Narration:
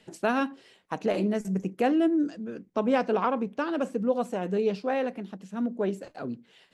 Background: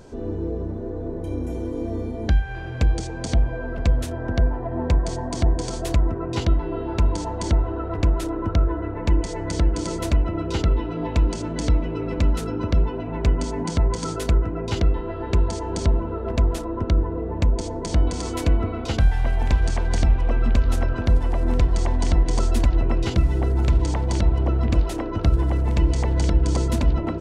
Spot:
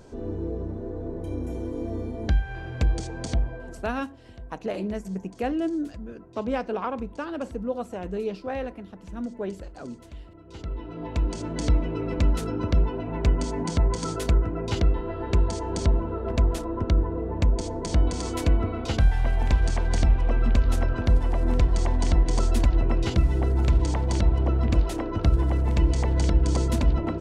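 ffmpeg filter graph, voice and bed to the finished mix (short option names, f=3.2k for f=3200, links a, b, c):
-filter_complex "[0:a]adelay=3600,volume=-3.5dB[a];[1:a]volume=17.5dB,afade=t=out:st=3.22:d=0.72:silence=0.105925,afade=t=in:st=10.45:d=1.26:silence=0.0891251[b];[a][b]amix=inputs=2:normalize=0"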